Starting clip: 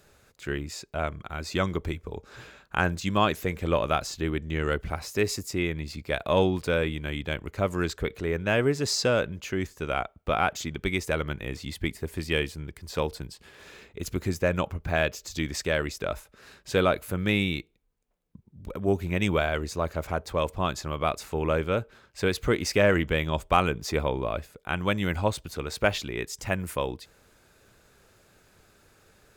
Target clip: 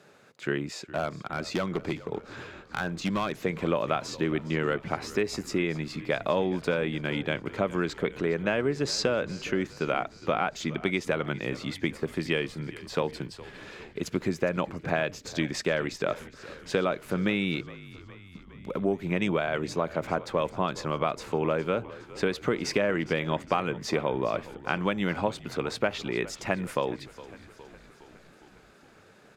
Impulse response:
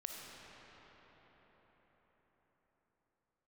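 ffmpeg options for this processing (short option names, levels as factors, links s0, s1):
-filter_complex "[0:a]highpass=f=140:w=0.5412,highpass=f=140:w=1.3066,aemphasis=mode=reproduction:type=50fm,acompressor=threshold=0.0447:ratio=6,asettb=1/sr,asplit=3[s0][s1][s2];[s0]atrim=end=0.774[s3];[s1]atrim=start=0.77:end=3.34,asetpts=PTS-STARTPTS,afade=t=in:d=0.004:c=qsin,afade=t=out:st=2.566:d=0.004:c=qsin,asoftclip=type=hard:threshold=0.0473[s4];[s2]atrim=start=3.336[s5];[s3][s4]acrossfade=d=0.004:c1=hsin:c2=qsin[s6];[s6][s5]acrossfade=d=0.004:c1=qsin:c2=hsin,asplit=7[s7][s8][s9][s10][s11][s12][s13];[s8]adelay=412,afreqshift=-47,volume=0.126[s14];[s9]adelay=824,afreqshift=-94,volume=0.0804[s15];[s10]adelay=1236,afreqshift=-141,volume=0.0513[s16];[s11]adelay=1648,afreqshift=-188,volume=0.0331[s17];[s12]adelay=2060,afreqshift=-235,volume=0.0211[s18];[s13]adelay=2472,afreqshift=-282,volume=0.0135[s19];[s7][s14][s15][s16][s17][s18][s19]amix=inputs=7:normalize=0,volume=1.68"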